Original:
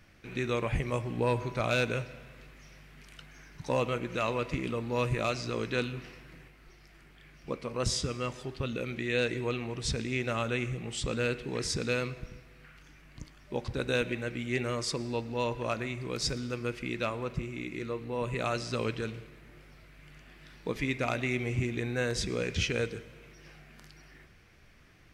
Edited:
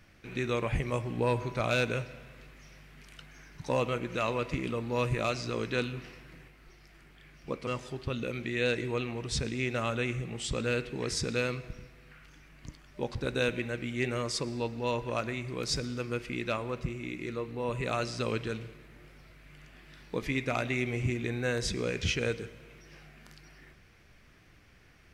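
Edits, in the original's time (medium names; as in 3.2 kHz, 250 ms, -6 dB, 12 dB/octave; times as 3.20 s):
7.67–8.20 s: delete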